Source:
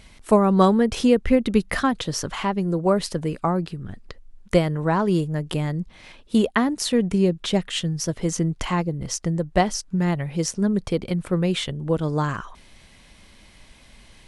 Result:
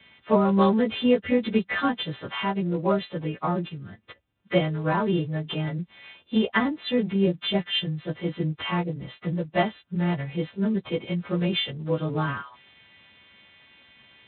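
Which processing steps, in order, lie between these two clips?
partials quantised in pitch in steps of 2 st; trim -3.5 dB; Speex 18 kbps 8 kHz

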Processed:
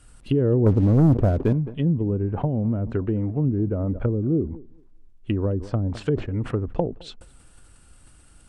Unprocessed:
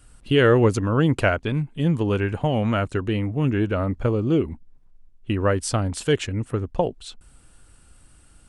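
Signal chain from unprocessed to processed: low-pass that closes with the level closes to 350 Hz, closed at -18 dBFS; 0.66–1.53 s: waveshaping leveller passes 2; tape echo 213 ms, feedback 21%, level -21.5 dB, low-pass 1.4 kHz; decay stretcher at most 130 dB/s

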